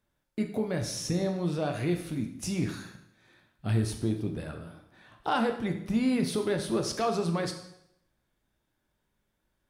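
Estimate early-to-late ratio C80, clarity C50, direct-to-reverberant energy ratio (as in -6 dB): 11.0 dB, 8.5 dB, 4.0 dB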